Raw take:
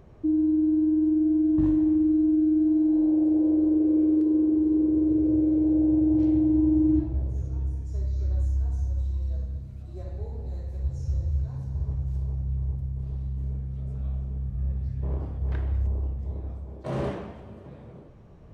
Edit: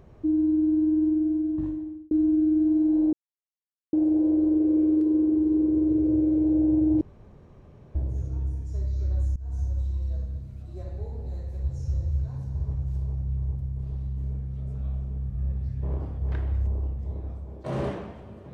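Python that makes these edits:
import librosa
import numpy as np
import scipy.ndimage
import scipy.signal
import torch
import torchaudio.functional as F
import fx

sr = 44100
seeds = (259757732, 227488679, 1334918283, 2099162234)

y = fx.edit(x, sr, fx.fade_out_span(start_s=1.04, length_s=1.07),
    fx.insert_silence(at_s=3.13, length_s=0.8),
    fx.room_tone_fill(start_s=6.21, length_s=0.94),
    fx.fade_in_from(start_s=8.56, length_s=0.25, floor_db=-23.5), tone=tone)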